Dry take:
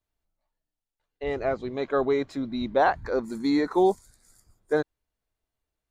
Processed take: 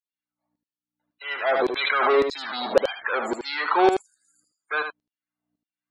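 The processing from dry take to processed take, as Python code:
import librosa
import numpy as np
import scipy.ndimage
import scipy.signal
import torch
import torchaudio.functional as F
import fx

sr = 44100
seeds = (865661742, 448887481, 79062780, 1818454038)

p1 = fx.add_hum(x, sr, base_hz=60, snr_db=30)
p2 = fx.fuzz(p1, sr, gain_db=44.0, gate_db=-42.0)
p3 = p1 + (p2 * librosa.db_to_amplitude(-5.5))
p4 = fx.spec_topn(p3, sr, count=64)
p5 = fx.filter_lfo_highpass(p4, sr, shape='saw_down', hz=1.8, low_hz=430.0, high_hz=5100.0, q=1.6)
p6 = p5 + fx.echo_single(p5, sr, ms=77, db=-7.0, dry=0)
p7 = fx.pre_swell(p6, sr, db_per_s=28.0, at=(1.53, 2.67))
y = p7 * librosa.db_to_amplitude(-2.0)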